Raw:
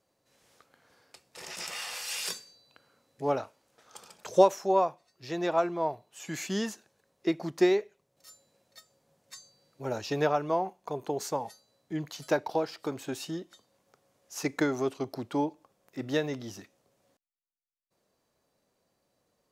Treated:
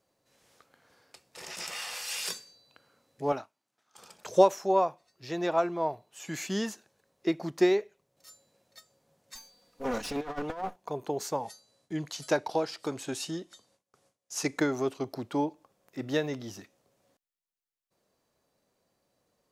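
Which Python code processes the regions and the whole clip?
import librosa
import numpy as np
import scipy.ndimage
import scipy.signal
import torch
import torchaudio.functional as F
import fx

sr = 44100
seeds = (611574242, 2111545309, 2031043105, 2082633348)

y = fx.chain(x, sr, fx.highpass(hz=140.0, slope=12),
    fx.peak_eq(hz=500.0, db=-12.0, octaves=0.41),
    fx.upward_expand(threshold_db=-57.0, expansion=1.5), at=(3.32, 3.98))
y = fx.chain(y, sr, fx.lower_of_two(delay_ms=4.1),
    fx.over_compress(threshold_db=-32.0, ratio=-0.5), at=(9.35, 10.76))
y = fx.chain(y, sr, fx.gate_hold(open_db=-56.0, close_db=-67.0, hold_ms=71.0, range_db=-21, attack_ms=1.4, release_ms=100.0),
    fx.lowpass(hz=11000.0, slope=24),
    fx.high_shelf(hz=4100.0, db=7.0), at=(11.43, 14.59))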